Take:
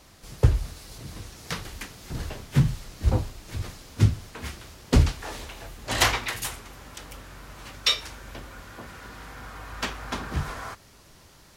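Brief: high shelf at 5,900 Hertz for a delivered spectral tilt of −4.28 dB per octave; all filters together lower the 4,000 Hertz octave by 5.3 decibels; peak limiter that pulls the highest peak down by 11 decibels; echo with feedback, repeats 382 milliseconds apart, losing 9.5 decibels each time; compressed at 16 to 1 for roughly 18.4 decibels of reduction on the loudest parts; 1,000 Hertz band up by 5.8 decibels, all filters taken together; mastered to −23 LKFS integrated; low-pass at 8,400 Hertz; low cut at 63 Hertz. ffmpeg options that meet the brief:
ffmpeg -i in.wav -af "highpass=63,lowpass=8400,equalizer=frequency=1000:width_type=o:gain=7.5,equalizer=frequency=4000:width_type=o:gain=-8.5,highshelf=frequency=5900:gain=4,acompressor=threshold=-32dB:ratio=16,alimiter=level_in=5.5dB:limit=-24dB:level=0:latency=1,volume=-5.5dB,aecho=1:1:382|764|1146|1528:0.335|0.111|0.0365|0.012,volume=18dB" out.wav

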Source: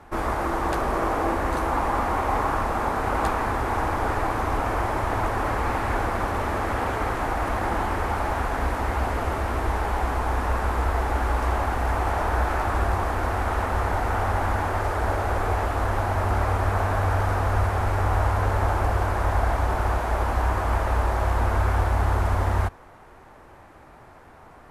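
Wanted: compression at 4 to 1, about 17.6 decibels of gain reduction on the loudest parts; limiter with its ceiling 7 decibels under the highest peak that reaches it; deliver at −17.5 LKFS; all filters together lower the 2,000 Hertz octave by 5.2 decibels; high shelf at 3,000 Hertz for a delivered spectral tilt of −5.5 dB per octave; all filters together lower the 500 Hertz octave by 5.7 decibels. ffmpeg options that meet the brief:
ffmpeg -i in.wav -af "equalizer=frequency=500:width_type=o:gain=-7.5,equalizer=frequency=2000:width_type=o:gain=-8.5,highshelf=frequency=3000:gain=5.5,acompressor=threshold=-41dB:ratio=4,volume=28dB,alimiter=limit=-7.5dB:level=0:latency=1" out.wav

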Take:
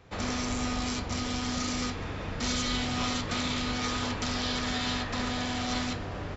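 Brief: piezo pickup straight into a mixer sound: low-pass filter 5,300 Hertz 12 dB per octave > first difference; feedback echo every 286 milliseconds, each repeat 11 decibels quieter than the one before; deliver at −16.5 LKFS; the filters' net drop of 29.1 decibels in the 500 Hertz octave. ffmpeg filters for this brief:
ffmpeg -i in.wav -af "lowpass=5300,aderivative,equalizer=frequency=500:width_type=o:gain=-8.5,aecho=1:1:286|572|858:0.282|0.0789|0.0221,volume=24.5dB" out.wav

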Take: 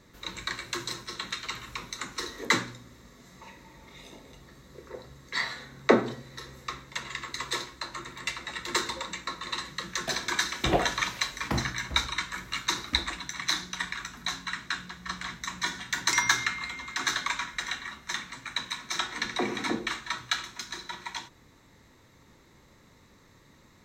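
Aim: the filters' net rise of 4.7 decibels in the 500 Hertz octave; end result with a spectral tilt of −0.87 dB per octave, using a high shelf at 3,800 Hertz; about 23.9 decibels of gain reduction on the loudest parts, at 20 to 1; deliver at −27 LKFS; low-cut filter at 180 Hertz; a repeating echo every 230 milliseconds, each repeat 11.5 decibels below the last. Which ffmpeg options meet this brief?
ffmpeg -i in.wav -af "highpass=180,equalizer=frequency=500:width_type=o:gain=6,highshelf=frequency=3800:gain=5,acompressor=threshold=-33dB:ratio=20,aecho=1:1:230|460|690:0.266|0.0718|0.0194,volume=10.5dB" out.wav

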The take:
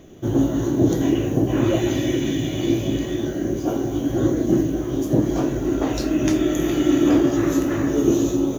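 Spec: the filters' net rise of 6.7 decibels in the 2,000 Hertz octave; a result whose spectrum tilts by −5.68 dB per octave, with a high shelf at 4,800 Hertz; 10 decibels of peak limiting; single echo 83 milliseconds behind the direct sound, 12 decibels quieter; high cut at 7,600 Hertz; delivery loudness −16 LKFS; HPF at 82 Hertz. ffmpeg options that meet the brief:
ffmpeg -i in.wav -af "highpass=82,lowpass=7600,equalizer=frequency=2000:width_type=o:gain=7.5,highshelf=frequency=4800:gain=4,alimiter=limit=-15dB:level=0:latency=1,aecho=1:1:83:0.251,volume=7.5dB" out.wav

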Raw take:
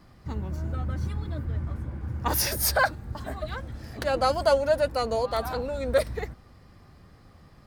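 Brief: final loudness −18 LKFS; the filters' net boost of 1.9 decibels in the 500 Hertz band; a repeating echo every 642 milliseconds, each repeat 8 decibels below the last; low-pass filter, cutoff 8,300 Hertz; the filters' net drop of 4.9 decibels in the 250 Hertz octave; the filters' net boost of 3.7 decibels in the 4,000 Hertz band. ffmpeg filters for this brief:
ffmpeg -i in.wav -af "lowpass=8300,equalizer=frequency=250:width_type=o:gain=-7.5,equalizer=frequency=500:width_type=o:gain=3.5,equalizer=frequency=4000:width_type=o:gain=5,aecho=1:1:642|1284|1926|2568|3210:0.398|0.159|0.0637|0.0255|0.0102,volume=8.5dB" out.wav

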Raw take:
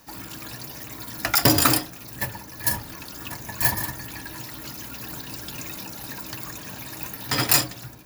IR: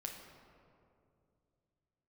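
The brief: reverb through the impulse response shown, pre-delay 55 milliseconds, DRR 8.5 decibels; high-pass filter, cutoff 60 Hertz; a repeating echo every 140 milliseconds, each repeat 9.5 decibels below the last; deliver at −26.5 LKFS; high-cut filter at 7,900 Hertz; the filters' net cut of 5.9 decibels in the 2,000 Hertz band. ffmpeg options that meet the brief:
-filter_complex "[0:a]highpass=60,lowpass=7900,equalizer=frequency=2000:width_type=o:gain=-7.5,aecho=1:1:140|280|420|560:0.335|0.111|0.0365|0.012,asplit=2[link_01][link_02];[1:a]atrim=start_sample=2205,adelay=55[link_03];[link_02][link_03]afir=irnorm=-1:irlink=0,volume=-6.5dB[link_04];[link_01][link_04]amix=inputs=2:normalize=0,volume=1.5dB"

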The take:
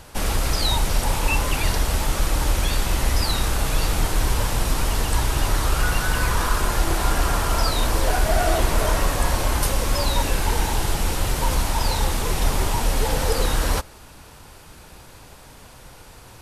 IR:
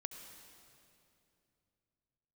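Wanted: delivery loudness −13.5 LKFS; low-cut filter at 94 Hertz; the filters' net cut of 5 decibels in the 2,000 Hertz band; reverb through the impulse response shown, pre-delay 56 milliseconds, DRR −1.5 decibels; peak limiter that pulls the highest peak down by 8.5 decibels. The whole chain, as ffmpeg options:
-filter_complex "[0:a]highpass=94,equalizer=frequency=2000:width_type=o:gain=-7,alimiter=limit=-18.5dB:level=0:latency=1,asplit=2[link_01][link_02];[1:a]atrim=start_sample=2205,adelay=56[link_03];[link_02][link_03]afir=irnorm=-1:irlink=0,volume=4.5dB[link_04];[link_01][link_04]amix=inputs=2:normalize=0,volume=10.5dB"

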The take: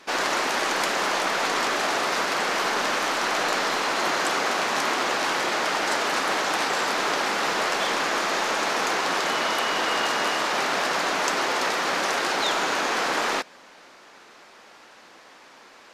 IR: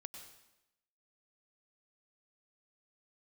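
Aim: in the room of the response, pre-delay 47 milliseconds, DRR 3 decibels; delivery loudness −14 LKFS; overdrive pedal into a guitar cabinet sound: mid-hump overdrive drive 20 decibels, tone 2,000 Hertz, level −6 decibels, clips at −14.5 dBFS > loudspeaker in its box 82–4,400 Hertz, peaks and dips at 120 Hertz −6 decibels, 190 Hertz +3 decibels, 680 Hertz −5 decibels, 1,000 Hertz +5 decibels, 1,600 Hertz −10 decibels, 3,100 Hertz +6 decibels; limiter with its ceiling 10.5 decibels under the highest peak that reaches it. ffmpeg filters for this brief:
-filter_complex "[0:a]alimiter=limit=-19.5dB:level=0:latency=1,asplit=2[link_01][link_02];[1:a]atrim=start_sample=2205,adelay=47[link_03];[link_02][link_03]afir=irnorm=-1:irlink=0,volume=2dB[link_04];[link_01][link_04]amix=inputs=2:normalize=0,asplit=2[link_05][link_06];[link_06]highpass=frequency=720:poles=1,volume=20dB,asoftclip=type=tanh:threshold=-14.5dB[link_07];[link_05][link_07]amix=inputs=2:normalize=0,lowpass=frequency=2000:poles=1,volume=-6dB,highpass=82,equalizer=frequency=120:width_type=q:width=4:gain=-6,equalizer=frequency=190:width_type=q:width=4:gain=3,equalizer=frequency=680:width_type=q:width=4:gain=-5,equalizer=frequency=1000:width_type=q:width=4:gain=5,equalizer=frequency=1600:width_type=q:width=4:gain=-10,equalizer=frequency=3100:width_type=q:width=4:gain=6,lowpass=frequency=4400:width=0.5412,lowpass=frequency=4400:width=1.3066,volume=8.5dB"

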